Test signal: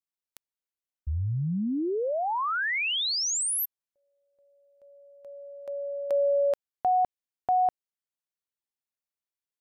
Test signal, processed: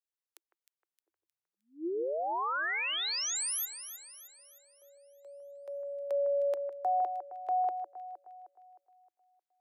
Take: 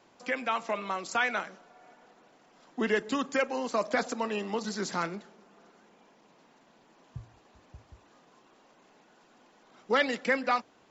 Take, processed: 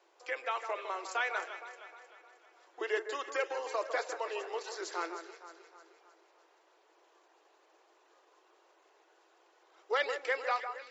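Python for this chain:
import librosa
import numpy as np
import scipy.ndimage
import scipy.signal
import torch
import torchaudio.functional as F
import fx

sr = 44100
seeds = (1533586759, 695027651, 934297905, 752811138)

p1 = scipy.signal.sosfilt(scipy.signal.ellip(6, 1.0, 80, 330.0, 'highpass', fs=sr, output='sos'), x)
p2 = p1 + fx.echo_alternate(p1, sr, ms=155, hz=1800.0, feedback_pct=68, wet_db=-8, dry=0)
y = F.gain(torch.from_numpy(p2), -5.0).numpy()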